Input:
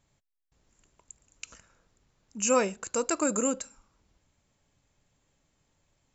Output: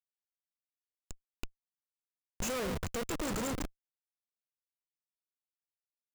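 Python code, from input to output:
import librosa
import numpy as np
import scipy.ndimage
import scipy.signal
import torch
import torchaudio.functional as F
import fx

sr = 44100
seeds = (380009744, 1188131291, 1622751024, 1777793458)

y = fx.echo_alternate(x, sr, ms=144, hz=1000.0, feedback_pct=61, wet_db=-13)
y = fx.rev_schroeder(y, sr, rt60_s=2.0, comb_ms=28, drr_db=18.5)
y = fx.schmitt(y, sr, flips_db=-31.0)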